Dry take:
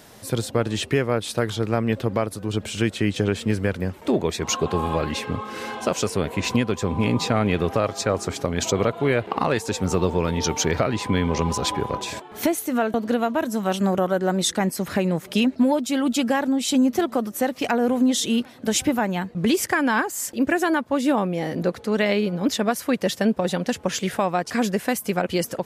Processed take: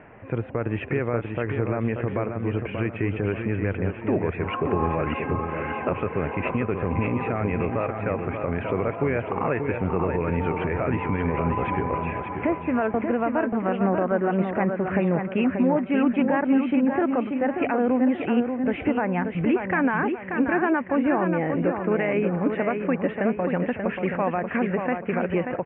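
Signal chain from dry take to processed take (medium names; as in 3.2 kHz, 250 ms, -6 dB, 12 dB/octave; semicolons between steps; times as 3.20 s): steep low-pass 2.6 kHz 72 dB/octave; peaking EQ 210 Hz -4.5 dB 0.21 oct; peak limiter -15.5 dBFS, peak gain reduction 8.5 dB; reverse; upward compressor, threshold -38 dBFS; reverse; feedback delay 584 ms, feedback 40%, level -6 dB; trim +1 dB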